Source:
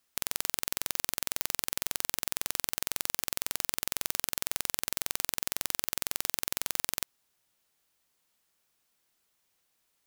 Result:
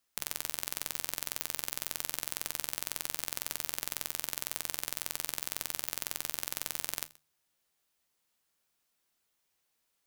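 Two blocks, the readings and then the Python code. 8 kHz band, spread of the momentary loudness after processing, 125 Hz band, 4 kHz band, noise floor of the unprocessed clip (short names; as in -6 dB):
-3.5 dB, 0 LU, -4.5 dB, -3.5 dB, -76 dBFS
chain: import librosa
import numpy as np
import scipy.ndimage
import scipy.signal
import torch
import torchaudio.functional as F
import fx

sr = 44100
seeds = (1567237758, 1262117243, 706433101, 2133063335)

p1 = fx.hum_notches(x, sr, base_hz=50, count=3)
p2 = fx.comb_fb(p1, sr, f0_hz=77.0, decay_s=0.17, harmonics='all', damping=0.0, mix_pct=60)
y = p2 + fx.echo_single(p2, sr, ms=127, db=-23.0, dry=0)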